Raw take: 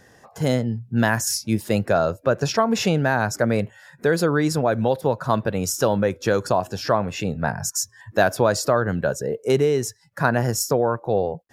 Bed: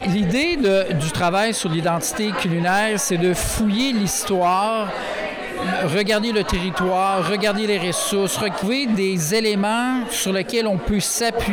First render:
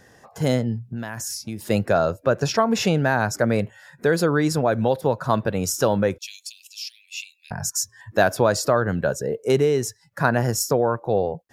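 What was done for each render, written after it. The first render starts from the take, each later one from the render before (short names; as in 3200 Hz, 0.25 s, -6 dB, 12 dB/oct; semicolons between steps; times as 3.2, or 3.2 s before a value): 0.87–1.66 compressor 10:1, threshold -26 dBFS; 6.18–7.51 steep high-pass 2400 Hz 72 dB/oct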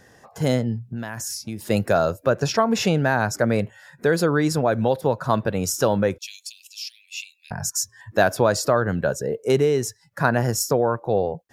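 1.76–2.3 high shelf 7100 Hz +10 dB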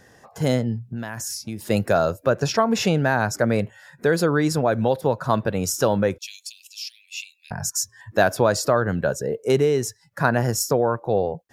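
nothing audible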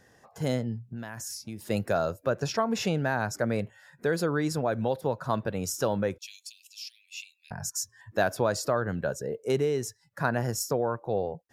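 gain -7.5 dB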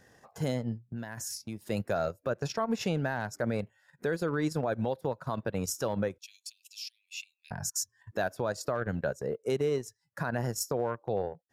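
transient shaper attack 0 dB, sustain -12 dB; limiter -20 dBFS, peak gain reduction 9.5 dB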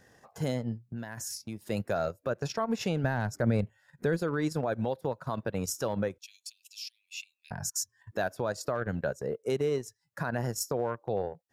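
3.04–4.19 low shelf 200 Hz +11 dB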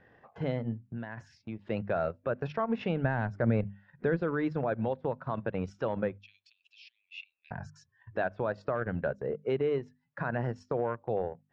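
LPF 2900 Hz 24 dB/oct; notches 50/100/150/200/250 Hz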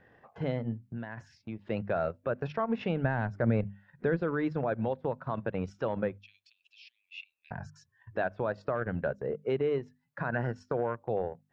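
10.32–10.83 bell 1500 Hz +11 dB 0.23 oct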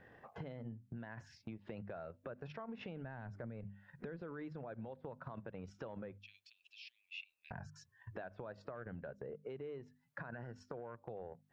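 limiter -27.5 dBFS, peak gain reduction 11 dB; compressor 6:1, threshold -44 dBFS, peak gain reduction 12 dB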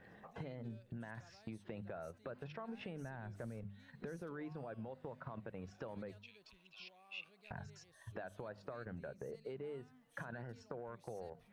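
add bed -47 dB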